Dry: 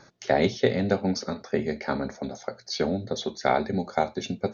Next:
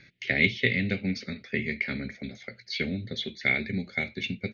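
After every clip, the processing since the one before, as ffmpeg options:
ffmpeg -i in.wav -af "firequalizer=gain_entry='entry(130,0);entry(940,-26);entry(2100,13);entry(5800,-12)':delay=0.05:min_phase=1" out.wav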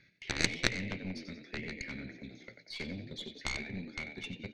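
ffmpeg -i in.wav -filter_complex "[0:a]asplit=6[link_01][link_02][link_03][link_04][link_05][link_06];[link_02]adelay=91,afreqshift=52,volume=-9dB[link_07];[link_03]adelay=182,afreqshift=104,volume=-16.5dB[link_08];[link_04]adelay=273,afreqshift=156,volume=-24.1dB[link_09];[link_05]adelay=364,afreqshift=208,volume=-31.6dB[link_10];[link_06]adelay=455,afreqshift=260,volume=-39.1dB[link_11];[link_01][link_07][link_08][link_09][link_10][link_11]amix=inputs=6:normalize=0,aeval=exprs='0.501*(cos(1*acos(clip(val(0)/0.501,-1,1)))-cos(1*PI/2))+0.224*(cos(3*acos(clip(val(0)/0.501,-1,1)))-cos(3*PI/2))+0.0316*(cos(4*acos(clip(val(0)/0.501,-1,1)))-cos(4*PI/2))+0.0282*(cos(5*acos(clip(val(0)/0.501,-1,1)))-cos(5*PI/2))+0.0141*(cos(7*acos(clip(val(0)/0.501,-1,1)))-cos(7*PI/2))':channel_layout=same,volume=2dB" out.wav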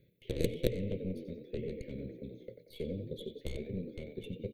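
ffmpeg -i in.wav -af "firequalizer=gain_entry='entry(130,0);entry(260,-5);entry(490,9);entry(760,-22);entry(1300,-30);entry(3300,-10);entry(5100,-28);entry(12000,8)':delay=0.05:min_phase=1,volume=4dB" out.wav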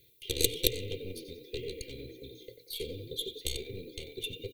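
ffmpeg -i in.wav -af "aecho=1:1:2.5:0.77,aexciter=amount=6.6:drive=6.9:freq=2500,volume=-3.5dB" out.wav

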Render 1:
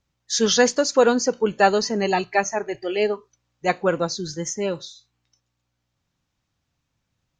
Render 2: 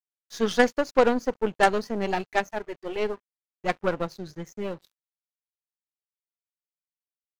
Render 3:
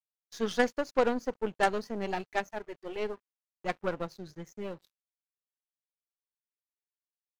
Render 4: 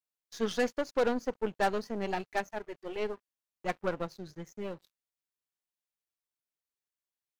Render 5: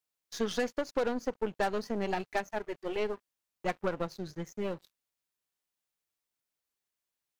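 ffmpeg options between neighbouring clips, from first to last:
ffmpeg -i in.wav -af "bass=frequency=250:gain=2,treble=frequency=4000:gain=-13,aeval=exprs='0.631*(cos(1*acos(clip(val(0)/0.631,-1,1)))-cos(1*PI/2))+0.112*(cos(3*acos(clip(val(0)/0.631,-1,1)))-cos(3*PI/2))+0.0398*(cos(4*acos(clip(val(0)/0.631,-1,1)))-cos(4*PI/2))+0.0562*(cos(6*acos(clip(val(0)/0.631,-1,1)))-cos(6*PI/2))+0.0501*(cos(8*acos(clip(val(0)/0.631,-1,1)))-cos(8*PI/2))':channel_layout=same,aeval=exprs='sgn(val(0))*max(abs(val(0))-0.00398,0)':channel_layout=same" out.wav
ffmpeg -i in.wav -af "agate=range=-34dB:threshold=-52dB:ratio=16:detection=peak,volume=-6.5dB" out.wav
ffmpeg -i in.wav -af "volume=20.5dB,asoftclip=hard,volume=-20.5dB" out.wav
ffmpeg -i in.wav -af "acompressor=threshold=-32dB:ratio=4,volume=4.5dB" out.wav

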